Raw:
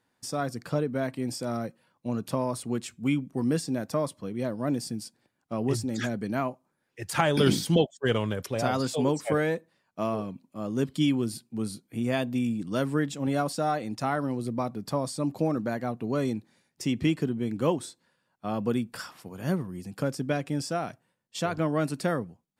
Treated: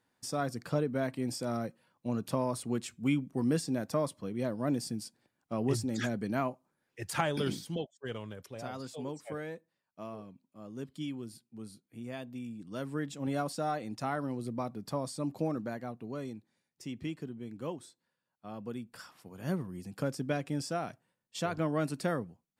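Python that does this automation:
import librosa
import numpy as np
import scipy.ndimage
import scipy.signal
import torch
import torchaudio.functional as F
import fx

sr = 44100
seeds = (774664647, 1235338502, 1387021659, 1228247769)

y = fx.gain(x, sr, db=fx.line((7.04, -3.0), (7.63, -14.0), (12.49, -14.0), (13.26, -6.0), (15.48, -6.0), (16.34, -13.0), (18.74, -13.0), (19.63, -4.5)))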